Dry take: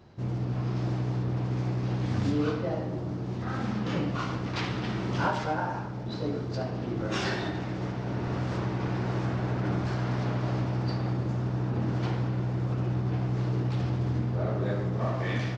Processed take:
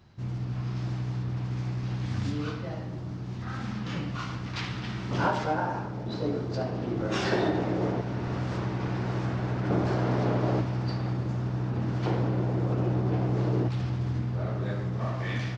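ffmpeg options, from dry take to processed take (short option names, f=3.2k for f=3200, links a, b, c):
-af "asetnsamples=n=441:p=0,asendcmd='5.11 equalizer g 2.5;7.32 equalizer g 10;8.01 equalizer g -1;9.7 equalizer g 8;10.61 equalizer g -2;12.06 equalizer g 7;13.68 equalizer g -5',equalizer=f=470:t=o:w=2:g=-9"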